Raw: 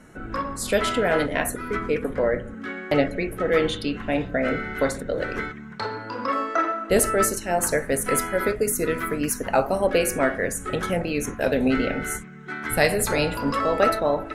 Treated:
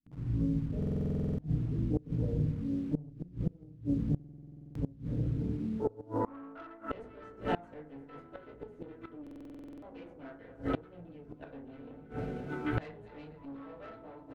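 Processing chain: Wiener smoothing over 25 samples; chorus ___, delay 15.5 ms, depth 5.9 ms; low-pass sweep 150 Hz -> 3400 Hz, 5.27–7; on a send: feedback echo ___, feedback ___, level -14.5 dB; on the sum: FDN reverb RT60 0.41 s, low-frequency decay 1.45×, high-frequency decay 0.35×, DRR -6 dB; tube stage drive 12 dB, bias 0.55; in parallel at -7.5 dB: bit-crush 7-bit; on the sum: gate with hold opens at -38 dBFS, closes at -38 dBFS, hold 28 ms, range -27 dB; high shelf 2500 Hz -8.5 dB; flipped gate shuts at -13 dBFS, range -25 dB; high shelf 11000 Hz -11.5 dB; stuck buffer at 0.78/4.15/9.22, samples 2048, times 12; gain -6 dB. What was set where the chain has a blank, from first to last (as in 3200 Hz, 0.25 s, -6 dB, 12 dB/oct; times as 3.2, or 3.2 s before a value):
0.56 Hz, 0.245 s, 56%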